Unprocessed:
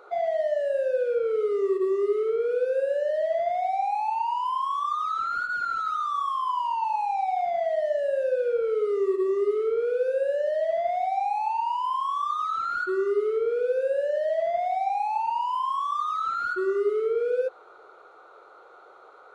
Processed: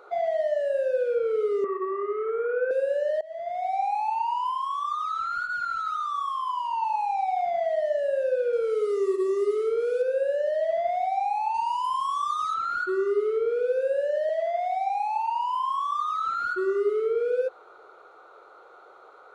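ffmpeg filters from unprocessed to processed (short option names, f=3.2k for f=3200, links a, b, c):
-filter_complex "[0:a]asettb=1/sr,asplit=3[a][b][c];[a]atrim=end=1.644[d];[b]atrim=start=1.64:end=2.71,asetpts=PTS-STARTPTS,afade=t=in:d=0.004:c=qsin,afade=t=out:st=1.066:d=0.004:c=qsin,highpass=330,equalizer=f=390:t=q:w=4:g=-5,equalizer=f=750:t=q:w=4:g=6,equalizer=f=1.1k:t=q:w=4:g=9,equalizer=f=1.6k:t=q:w=4:g=10,lowpass=f=2.3k:w=0.5412,lowpass=f=2.3k:w=1.3066[e];[c]atrim=start=2.706[f];[d][e]acrossfade=d=0.004:c1=hsin:c2=qsin[g];[g][f]acrossfade=d=0.004:c1=qsin:c2=hsin,asettb=1/sr,asplit=3[h][i][j];[h]atrim=end=4.524[k];[i]atrim=start=4.52:end=6.73,asetpts=PTS-STARTPTS,afade=t=in:d=0.004:c=qsin,afade=t=out:st=2.206:d=0.004:c=qsin,equalizer=f=370:w=1:g=-12[l];[j]atrim=start=6.726[m];[k][l]acrossfade=d=0.004:c1=hsin:c2=qsin[n];[n][m]acrossfade=d=0.004:c1=qsin:c2=hsin,asettb=1/sr,asplit=3[o][p][q];[o]atrim=end=8.534[r];[p]atrim=start=8.53:end=10.02,asetpts=PTS-STARTPTS,afade=t=in:d=0.004:c=qsin,afade=t=out:st=1.486:d=0.004:c=qsin,bass=f=250:g=-3,treble=f=4k:g=11[s];[q]atrim=start=10.016[t];[r][s]acrossfade=d=0.004:c1=hsin:c2=qsin[u];[u][t]acrossfade=d=0.004:c1=qsin:c2=hsin,asettb=1/sr,asplit=3[v][w][x];[v]atrim=end=11.544[y];[w]atrim=start=11.54:end=12.54,asetpts=PTS-STARTPTS,afade=t=in:d=0.004:c=qsin,afade=t=out:st=0.996:d=0.004:c=qsin,bass=f=250:g=6,treble=f=4k:g=10[z];[x]atrim=start=12.536[aa];[y][z]acrossfade=d=0.004:c1=hsin:c2=qsin[ab];[ab][aa]acrossfade=d=0.004:c1=qsin:c2=hsin,asettb=1/sr,asplit=3[ac][ad][ae];[ac]atrim=end=14.294[af];[ad]atrim=start=14.29:end=15.42,asetpts=PTS-STARTPTS,afade=t=in:d=0.004:c=qsin,afade=t=out:st=1.126:d=0.004:c=qsin,highpass=500[ag];[ae]atrim=start=15.416[ah];[af][ag]acrossfade=d=0.004:c1=hsin:c2=qsin[ai];[ai][ah]acrossfade=d=0.004:c1=qsin:c2=hsin,asplit=2[aj][ak];[aj]atrim=end=3.21,asetpts=PTS-STARTPTS,afade=t=out:st=3.206:d=0.004:c=hsin:silence=0.0668344[al];[ak]atrim=start=3.21,asetpts=PTS-STARTPTS,afade=t=in:d=0.57:silence=0.0668344[am];[al][am]concat=n=2:v=0:a=1"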